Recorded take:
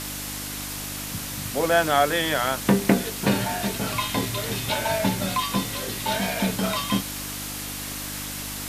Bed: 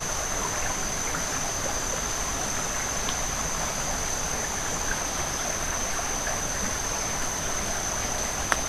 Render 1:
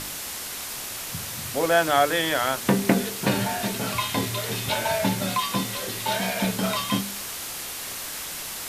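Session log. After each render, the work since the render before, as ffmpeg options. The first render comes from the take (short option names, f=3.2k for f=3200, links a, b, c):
-af "bandreject=f=50:t=h:w=4,bandreject=f=100:t=h:w=4,bandreject=f=150:t=h:w=4,bandreject=f=200:t=h:w=4,bandreject=f=250:t=h:w=4,bandreject=f=300:t=h:w=4,bandreject=f=350:t=h:w=4,bandreject=f=400:t=h:w=4,bandreject=f=450:t=h:w=4"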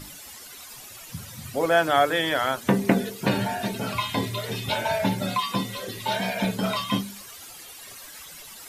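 -af "afftdn=nr=14:nf=-34"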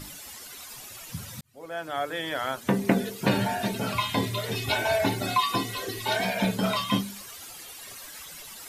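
-filter_complex "[0:a]asettb=1/sr,asplit=3[a][b][c];[a]atrim=end=4.554[d];[b]atrim=start=4.55:end=6.25,asetpts=PTS-STARTPTS,afade=t=in:d=0.004:c=qsin,afade=t=out:st=1.696:d=0.004:c=qsin,aecho=1:1:2.7:0.65,atrim=end_sample=74970[e];[c]atrim=start=6.246[f];[d][e]acrossfade=d=0.004:c1=hsin:c2=qsin[g];[g][f]acrossfade=d=0.004:c1=qsin:c2=hsin,asplit=2[h][i];[h]atrim=end=1.41,asetpts=PTS-STARTPTS,afade=t=out:st=1.406:d=0.004:c=hsin[j];[i]atrim=start=1.41,asetpts=PTS-STARTPTS,afade=t=in:d=1.92[k];[j][k]concat=n=2:v=0:a=1"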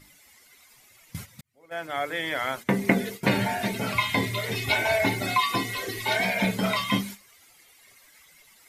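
-af "agate=range=-14dB:threshold=-37dB:ratio=16:detection=peak,equalizer=f=2.1k:t=o:w=0.23:g=12"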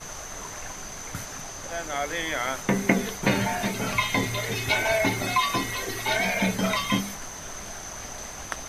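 -filter_complex "[1:a]volume=-9dB[a];[0:a][a]amix=inputs=2:normalize=0"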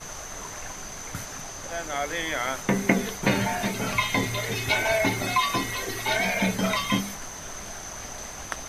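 -af anull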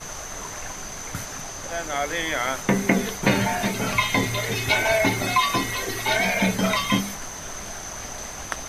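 -af "volume=3dB,alimiter=limit=-3dB:level=0:latency=1"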